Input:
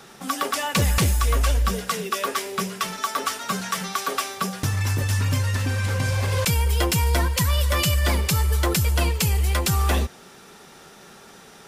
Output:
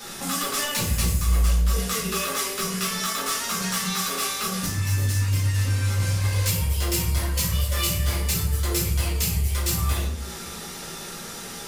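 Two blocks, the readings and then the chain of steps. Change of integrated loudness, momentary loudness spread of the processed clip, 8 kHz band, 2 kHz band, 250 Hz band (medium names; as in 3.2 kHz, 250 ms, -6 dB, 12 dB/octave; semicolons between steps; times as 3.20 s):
-1.5 dB, 9 LU, +2.5 dB, -3.0 dB, -2.0 dB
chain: saturation -20.5 dBFS, distortion -14 dB; tone controls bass +2 dB, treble +3 dB; compression 4:1, threshold -34 dBFS, peak gain reduction 11 dB; treble shelf 3.1 kHz +8 dB; simulated room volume 80 m³, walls mixed, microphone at 2 m; trim -2.5 dB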